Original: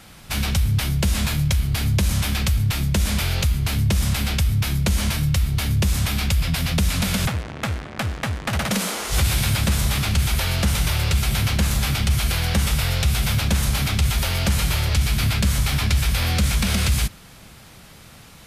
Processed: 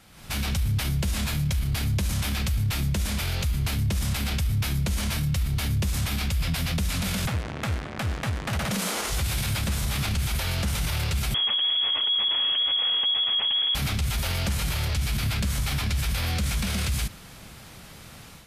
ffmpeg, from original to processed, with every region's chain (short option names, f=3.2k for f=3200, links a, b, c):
-filter_complex "[0:a]asettb=1/sr,asplit=3[a][b][c];[a]atrim=end=11.344[d];[b]atrim=start=11.34:end=13.75,asetpts=PTS-STARTPTS,afade=t=in:d=0.004:c=qsin,afade=t=out:st=2.406:d=0.004:c=qsin,lowshelf=f=250:g=9,lowpass=f=2.9k:t=q:w=0.5098,lowpass=f=2.9k:t=q:w=0.6013,lowpass=f=2.9k:t=q:w=0.9,lowpass=f=2.9k:t=q:w=2.563,afreqshift=-3400[e];[c]atrim=start=13.746[f];[d][e]acrossfade=d=0.004:c1=hsin:c2=qsin[g];[g][f]acrossfade=d=0.004:c1=qsin:c2=hsin,alimiter=limit=-19dB:level=0:latency=1:release=37,dynaudnorm=f=120:g=3:m=9dB,volume=-9dB"